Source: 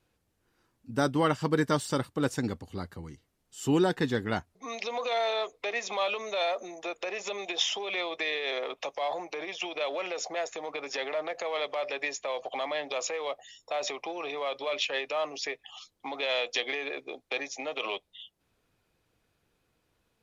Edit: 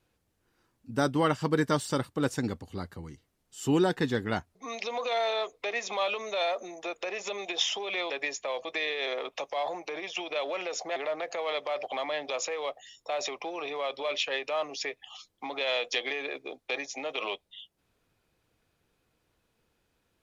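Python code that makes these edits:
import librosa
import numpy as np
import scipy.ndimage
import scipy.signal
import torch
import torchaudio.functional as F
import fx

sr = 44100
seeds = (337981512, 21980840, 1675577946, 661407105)

y = fx.edit(x, sr, fx.cut(start_s=10.41, length_s=0.62),
    fx.move(start_s=11.9, length_s=0.55, to_s=8.1), tone=tone)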